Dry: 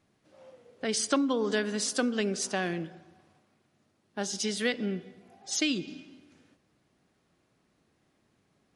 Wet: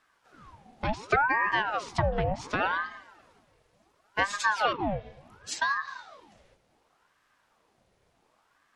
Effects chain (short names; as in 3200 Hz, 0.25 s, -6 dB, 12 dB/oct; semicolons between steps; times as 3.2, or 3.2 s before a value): treble ducked by the level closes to 1600 Hz, closed at -26 dBFS; 2.6–4.77 comb 4.9 ms, depth 80%; ring modulator with a swept carrier 840 Hz, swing 70%, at 0.69 Hz; gain +5 dB